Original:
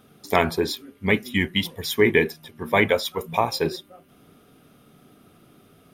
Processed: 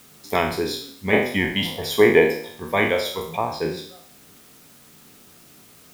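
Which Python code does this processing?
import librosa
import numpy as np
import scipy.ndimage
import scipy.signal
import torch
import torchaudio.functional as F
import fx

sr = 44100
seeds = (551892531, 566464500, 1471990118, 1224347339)

p1 = fx.spec_trails(x, sr, decay_s=0.6)
p2 = fx.peak_eq(p1, sr, hz=690.0, db=14.5, octaves=1.3, at=(1.13, 2.6))
p3 = fx.lowpass(p2, sr, hz=fx.line((3.35, 1300.0), (3.76, 3000.0)), slope=6, at=(3.35, 3.76), fade=0.02)
p4 = fx.quant_dither(p3, sr, seeds[0], bits=6, dither='triangular')
p5 = p3 + (p4 * 10.0 ** (-9.0 / 20.0))
y = p5 * 10.0 ** (-6.0 / 20.0)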